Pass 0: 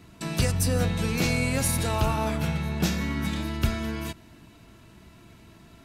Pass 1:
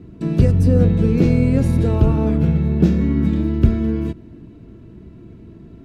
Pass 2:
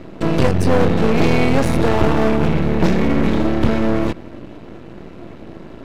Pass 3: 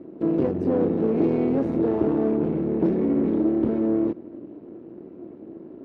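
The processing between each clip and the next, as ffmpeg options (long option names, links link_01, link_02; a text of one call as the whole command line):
ffmpeg -i in.wav -af "lowpass=frequency=1200:poles=1,lowshelf=frequency=570:width_type=q:width=1.5:gain=10,volume=1dB" out.wav
ffmpeg -i in.wav -filter_complex "[0:a]asplit=2[link_01][link_02];[link_02]highpass=frequency=720:poles=1,volume=25dB,asoftclip=type=tanh:threshold=-1dB[link_03];[link_01][link_03]amix=inputs=2:normalize=0,lowpass=frequency=3900:poles=1,volume=-6dB,aeval=exprs='max(val(0),0)':channel_layout=same" out.wav
ffmpeg -i in.wav -af "bandpass=frequency=330:width_type=q:width=2.2:csg=0" -ar 24000 -c:a libmp3lame -b:a 56k out.mp3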